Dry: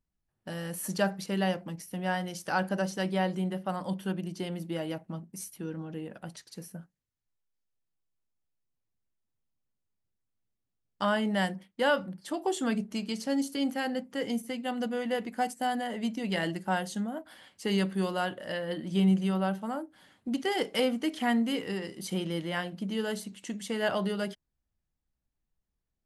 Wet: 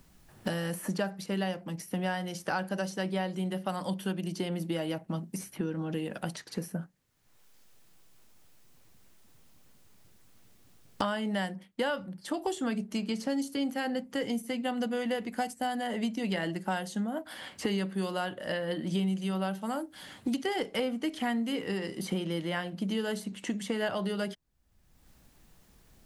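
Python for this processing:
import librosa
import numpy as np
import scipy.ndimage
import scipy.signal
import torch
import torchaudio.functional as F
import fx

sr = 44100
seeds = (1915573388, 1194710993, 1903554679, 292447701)

y = fx.band_squash(x, sr, depth_pct=100)
y = F.gain(torch.from_numpy(y), -2.0).numpy()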